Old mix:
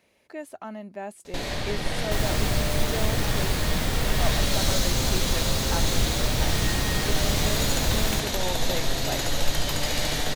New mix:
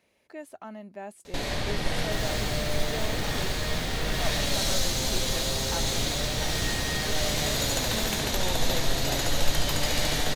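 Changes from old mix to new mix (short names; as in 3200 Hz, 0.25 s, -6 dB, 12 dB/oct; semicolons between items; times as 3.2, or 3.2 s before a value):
speech -4.0 dB; second sound -10.5 dB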